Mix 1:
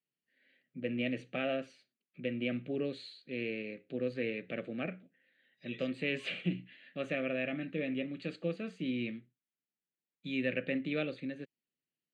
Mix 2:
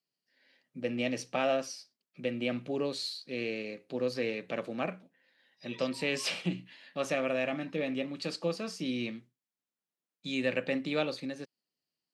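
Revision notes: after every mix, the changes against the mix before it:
first voice: remove air absorption 130 m; master: remove fixed phaser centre 2300 Hz, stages 4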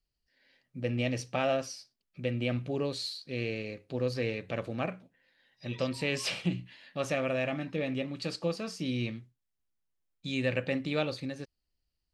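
master: remove HPF 170 Hz 24 dB/oct

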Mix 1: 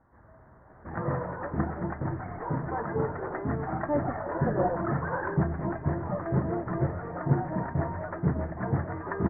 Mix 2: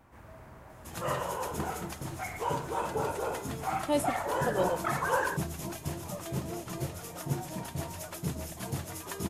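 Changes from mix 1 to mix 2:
first sound +4.5 dB; second sound -8.0 dB; master: remove steep low-pass 1900 Hz 72 dB/oct

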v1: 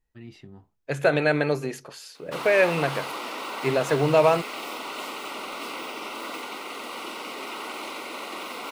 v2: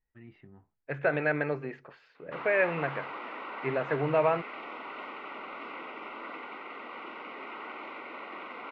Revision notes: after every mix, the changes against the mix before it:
master: add ladder low-pass 2500 Hz, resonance 35%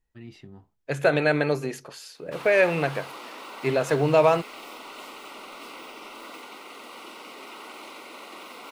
background -7.0 dB; master: remove ladder low-pass 2500 Hz, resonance 35%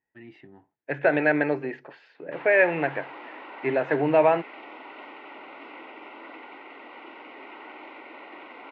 first voice: remove air absorption 190 m; master: add speaker cabinet 200–2500 Hz, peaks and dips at 210 Hz -6 dB, 300 Hz +4 dB, 470 Hz -3 dB, 850 Hz +3 dB, 1200 Hz -8 dB, 1800 Hz +6 dB

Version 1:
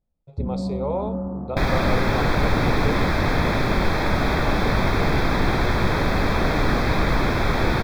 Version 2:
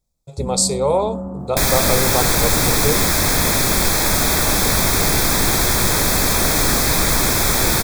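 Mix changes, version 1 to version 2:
speech +8.0 dB; master: remove air absorption 350 m

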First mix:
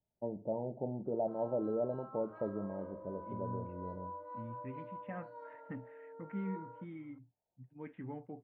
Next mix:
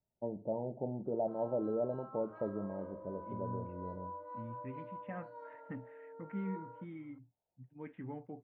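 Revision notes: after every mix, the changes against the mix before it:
none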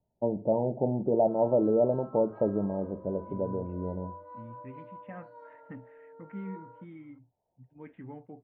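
first voice +10.5 dB

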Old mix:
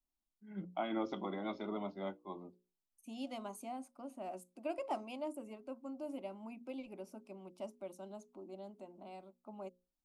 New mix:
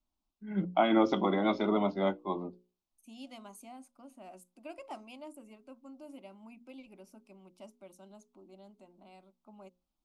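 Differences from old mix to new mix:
first voice +12.0 dB; second voice: add bell 510 Hz -7 dB 2.3 oct

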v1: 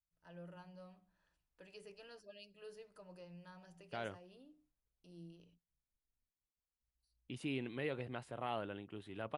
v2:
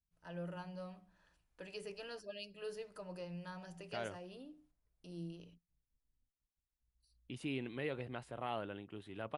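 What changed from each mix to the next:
first voice +8.5 dB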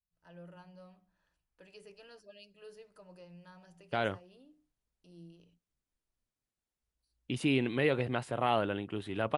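first voice -7.0 dB; second voice +11.5 dB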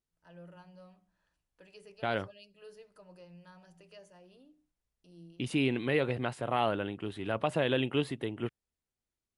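second voice: entry -1.90 s

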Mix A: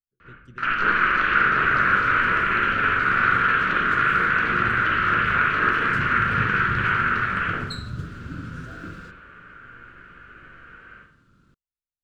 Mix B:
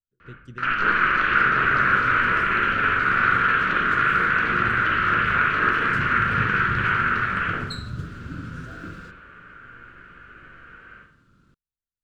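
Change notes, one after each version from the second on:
speech +5.5 dB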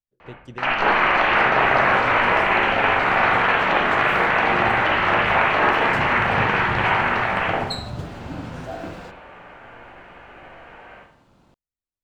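master: remove EQ curve 150 Hz 0 dB, 440 Hz -7 dB, 810 Hz -26 dB, 1400 Hz +6 dB, 2000 Hz -7 dB, 8800 Hz -5 dB, 14000 Hz -7 dB

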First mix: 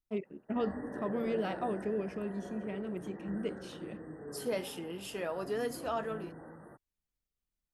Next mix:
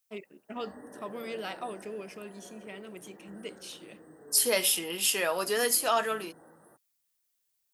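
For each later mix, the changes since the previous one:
second voice +9.5 dB; background: add bell 2700 Hz -12 dB 2.1 oct; master: add tilt +4 dB/oct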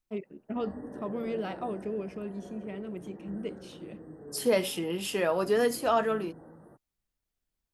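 master: add tilt -4 dB/oct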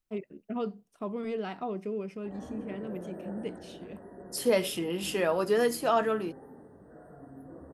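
background: entry +1.75 s

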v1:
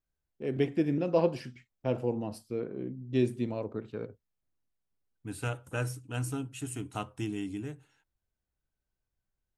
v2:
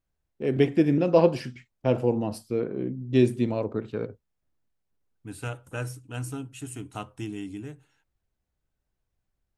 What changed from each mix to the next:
first voice +7.0 dB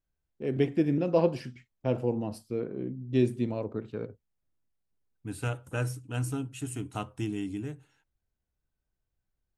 first voice -6.5 dB; master: add low shelf 370 Hz +3 dB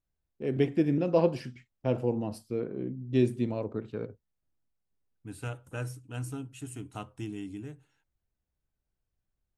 second voice -5.0 dB

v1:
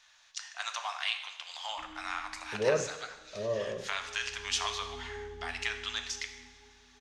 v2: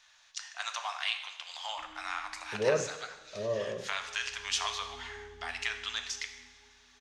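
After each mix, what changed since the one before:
background -6.0 dB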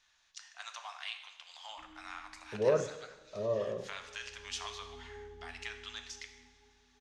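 first voice -9.0 dB

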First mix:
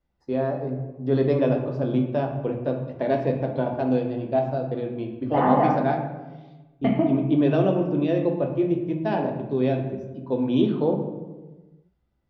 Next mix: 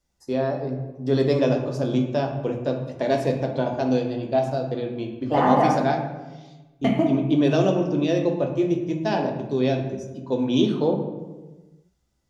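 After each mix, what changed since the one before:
master: remove air absorption 350 m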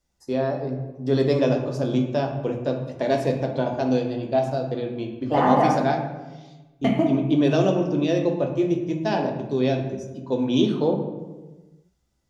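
none

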